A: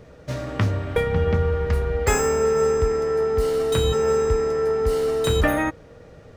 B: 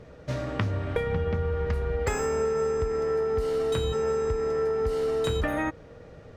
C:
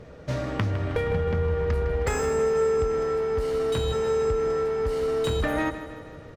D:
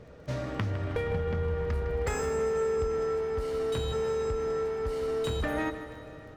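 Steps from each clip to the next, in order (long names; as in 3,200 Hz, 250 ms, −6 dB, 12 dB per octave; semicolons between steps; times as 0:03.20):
high-shelf EQ 8,600 Hz −10.5 dB; downward compressor, threshold −22 dBFS, peak gain reduction 8 dB; level −1.5 dB
in parallel at −9 dB: wave folding −25.5 dBFS; on the sum: repeating echo 157 ms, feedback 57%, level −12.5 dB
surface crackle 20 per second −43 dBFS; convolution reverb RT60 5.2 s, pre-delay 4 ms, DRR 15 dB; level −5 dB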